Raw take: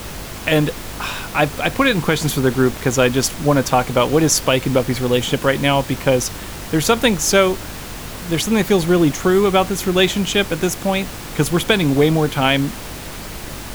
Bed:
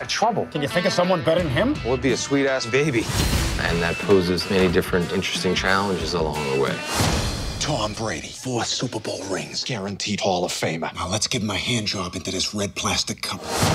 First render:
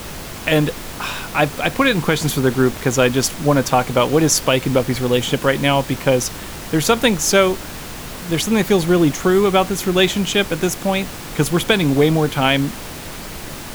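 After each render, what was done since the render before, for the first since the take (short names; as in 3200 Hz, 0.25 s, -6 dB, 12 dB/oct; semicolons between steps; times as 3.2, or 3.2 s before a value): de-hum 50 Hz, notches 2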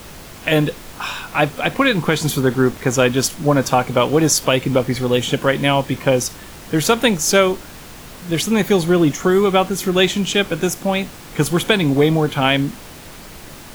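noise print and reduce 6 dB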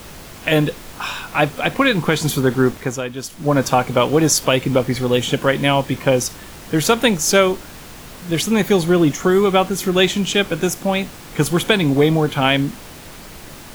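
2.7–3.58 dip -11 dB, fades 0.32 s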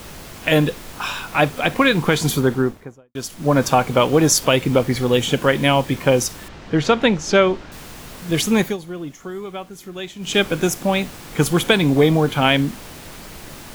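2.3–3.15 studio fade out; 6.48–7.72 air absorption 150 m; 8.59–10.37 dip -16 dB, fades 0.18 s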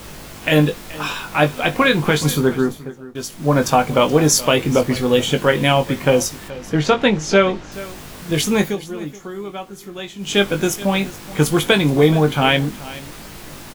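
doubler 20 ms -7 dB; echo 0.426 s -18 dB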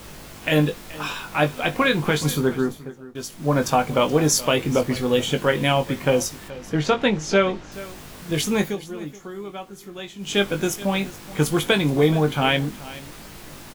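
gain -4.5 dB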